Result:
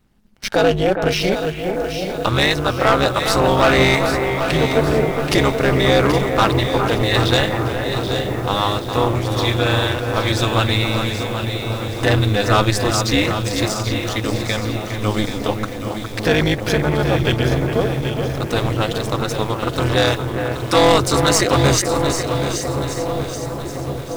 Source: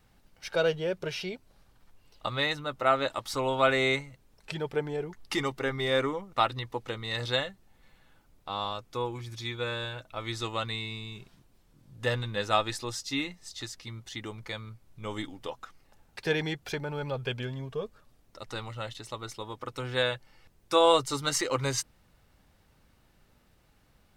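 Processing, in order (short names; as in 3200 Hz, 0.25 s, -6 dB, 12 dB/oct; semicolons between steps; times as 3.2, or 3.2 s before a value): sample leveller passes 3; low shelf 210 Hz +5.5 dB; on a send: dark delay 1.119 s, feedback 73%, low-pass 660 Hz, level -11 dB; on the sum: AM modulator 210 Hz, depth 80%; in parallel at +0.5 dB: limiter -18.5 dBFS, peak gain reduction 10.5 dB; on the sum: echo with dull and thin repeats by turns 0.41 s, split 2400 Hz, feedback 62%, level -7 dB; lo-fi delay 0.779 s, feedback 55%, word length 6-bit, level -8.5 dB; gain +2 dB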